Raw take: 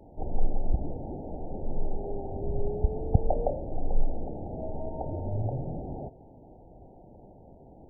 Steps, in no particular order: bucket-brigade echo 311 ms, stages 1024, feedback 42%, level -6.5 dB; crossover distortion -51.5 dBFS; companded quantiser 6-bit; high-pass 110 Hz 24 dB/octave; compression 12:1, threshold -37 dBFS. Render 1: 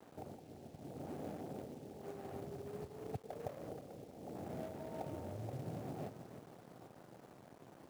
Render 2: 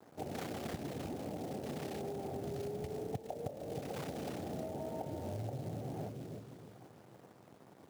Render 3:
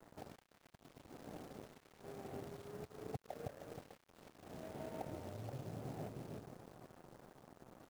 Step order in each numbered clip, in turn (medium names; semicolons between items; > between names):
compression > bucket-brigade echo > crossover distortion > high-pass > companded quantiser; crossover distortion > bucket-brigade echo > companded quantiser > high-pass > compression; bucket-brigade echo > compression > companded quantiser > high-pass > crossover distortion